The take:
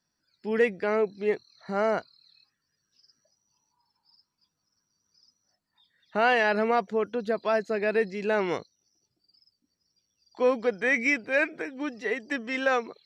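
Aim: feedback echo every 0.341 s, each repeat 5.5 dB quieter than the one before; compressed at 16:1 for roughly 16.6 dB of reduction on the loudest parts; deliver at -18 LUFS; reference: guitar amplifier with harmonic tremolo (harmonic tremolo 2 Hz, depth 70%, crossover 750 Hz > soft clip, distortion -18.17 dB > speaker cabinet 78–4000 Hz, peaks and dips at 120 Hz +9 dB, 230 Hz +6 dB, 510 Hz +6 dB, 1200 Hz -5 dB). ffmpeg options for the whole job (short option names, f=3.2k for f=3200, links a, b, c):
-filter_complex "[0:a]acompressor=threshold=-35dB:ratio=16,aecho=1:1:341|682|1023|1364|1705|2046|2387:0.531|0.281|0.149|0.079|0.0419|0.0222|0.0118,acrossover=split=750[a][b];[a]aeval=exprs='val(0)*(1-0.7/2+0.7/2*cos(2*PI*2*n/s))':c=same[c];[b]aeval=exprs='val(0)*(1-0.7/2-0.7/2*cos(2*PI*2*n/s))':c=same[d];[c][d]amix=inputs=2:normalize=0,asoftclip=threshold=-34dB,highpass=78,equalizer=f=120:t=q:w=4:g=9,equalizer=f=230:t=q:w=4:g=6,equalizer=f=510:t=q:w=4:g=6,equalizer=f=1.2k:t=q:w=4:g=-5,lowpass=f=4k:w=0.5412,lowpass=f=4k:w=1.3066,volume=24dB"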